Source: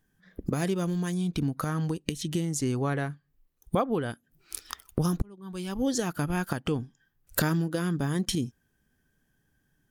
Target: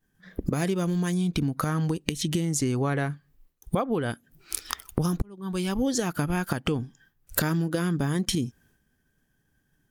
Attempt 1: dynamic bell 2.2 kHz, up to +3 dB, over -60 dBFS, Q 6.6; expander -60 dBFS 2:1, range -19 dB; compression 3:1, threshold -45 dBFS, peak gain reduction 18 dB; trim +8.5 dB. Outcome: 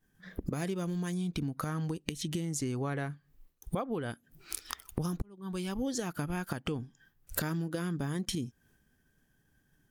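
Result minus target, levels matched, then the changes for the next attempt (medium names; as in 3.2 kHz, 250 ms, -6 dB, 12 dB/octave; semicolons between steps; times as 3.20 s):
compression: peak gain reduction +8 dB
change: compression 3:1, threshold -33 dBFS, peak gain reduction 10 dB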